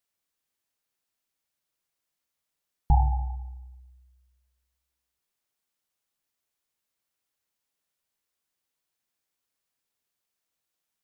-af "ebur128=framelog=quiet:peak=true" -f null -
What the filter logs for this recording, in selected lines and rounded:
Integrated loudness:
  I:         -27.4 LUFS
  Threshold: -40.3 LUFS
Loudness range:
  LRA:         8.2 LU
  Threshold: -54.3 LUFS
  LRA low:   -41.3 LUFS
  LRA high:  -33.1 LUFS
True peak:
  Peak:      -10.4 dBFS